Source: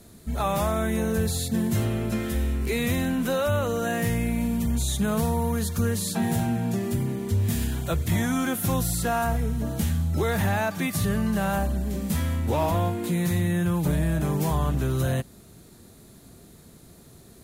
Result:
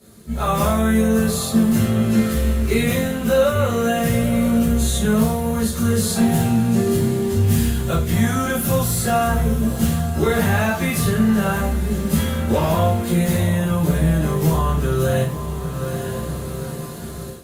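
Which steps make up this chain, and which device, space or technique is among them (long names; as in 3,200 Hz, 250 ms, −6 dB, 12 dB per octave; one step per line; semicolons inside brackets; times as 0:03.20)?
feedback delay with all-pass diffusion 900 ms, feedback 41%, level −13 dB
far-field microphone of a smart speaker (convolution reverb RT60 0.35 s, pre-delay 10 ms, DRR −8.5 dB; high-pass filter 84 Hz 12 dB per octave; automatic gain control; level −5.5 dB; Opus 48 kbit/s 48,000 Hz)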